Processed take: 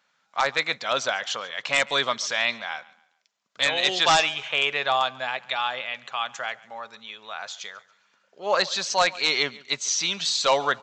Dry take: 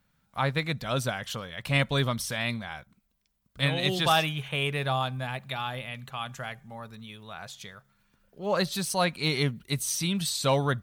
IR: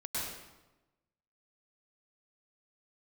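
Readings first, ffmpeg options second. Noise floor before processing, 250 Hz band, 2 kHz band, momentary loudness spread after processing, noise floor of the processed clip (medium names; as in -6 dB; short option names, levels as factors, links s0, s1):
-72 dBFS, -8.5 dB, +7.0 dB, 15 LU, -70 dBFS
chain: -af "highpass=610,aresample=16000,aeval=exprs='0.119*(abs(mod(val(0)/0.119+3,4)-2)-1)':c=same,aresample=44100,aecho=1:1:140|280|420:0.0841|0.0303|0.0109,volume=2.37"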